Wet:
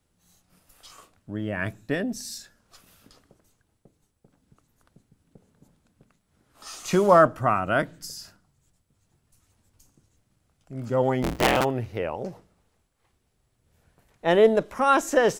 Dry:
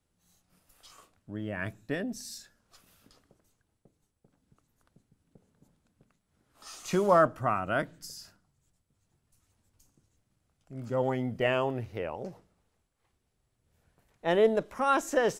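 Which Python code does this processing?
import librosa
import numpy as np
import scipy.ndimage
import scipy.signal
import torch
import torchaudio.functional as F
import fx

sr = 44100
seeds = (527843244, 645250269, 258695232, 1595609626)

y = fx.cycle_switch(x, sr, every=3, mode='inverted', at=(11.22, 11.63), fade=0.02)
y = y * librosa.db_to_amplitude(6.0)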